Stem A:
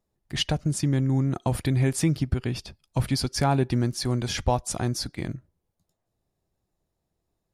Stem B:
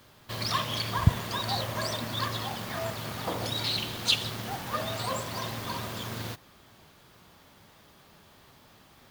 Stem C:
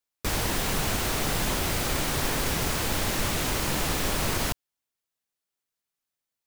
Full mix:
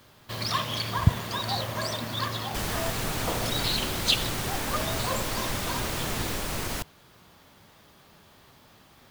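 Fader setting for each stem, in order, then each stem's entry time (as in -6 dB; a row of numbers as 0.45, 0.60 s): off, +1.0 dB, -4.5 dB; off, 0.00 s, 2.30 s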